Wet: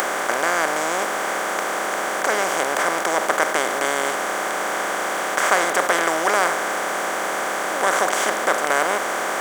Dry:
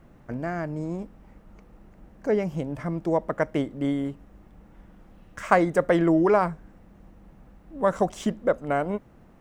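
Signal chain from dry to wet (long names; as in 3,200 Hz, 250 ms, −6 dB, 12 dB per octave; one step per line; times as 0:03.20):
compressor on every frequency bin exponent 0.2
spectral tilt +4.5 dB per octave
upward compression, threshold −20 dBFS
low-shelf EQ 340 Hz −10.5 dB
level −1 dB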